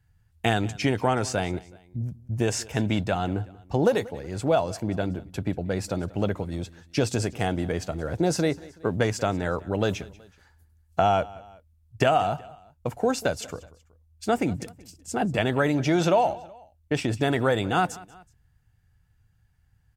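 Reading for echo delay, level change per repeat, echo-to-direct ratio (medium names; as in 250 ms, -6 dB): 187 ms, -6.5 dB, -20.0 dB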